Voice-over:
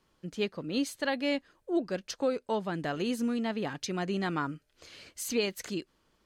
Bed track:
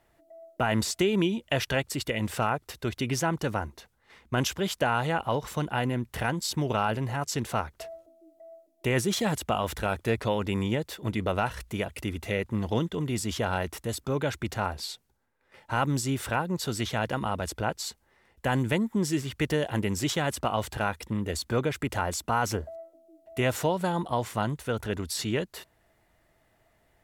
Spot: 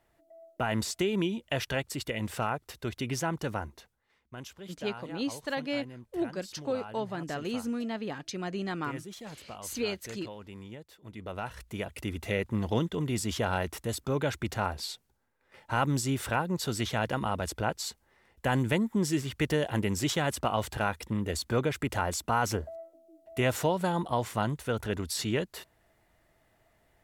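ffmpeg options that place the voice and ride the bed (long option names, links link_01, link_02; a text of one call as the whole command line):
ffmpeg -i stem1.wav -i stem2.wav -filter_complex "[0:a]adelay=4450,volume=-2.5dB[link_01];[1:a]volume=12dB,afade=type=out:start_time=3.8:duration=0.32:silence=0.223872,afade=type=in:start_time=11.08:duration=1.23:silence=0.158489[link_02];[link_01][link_02]amix=inputs=2:normalize=0" out.wav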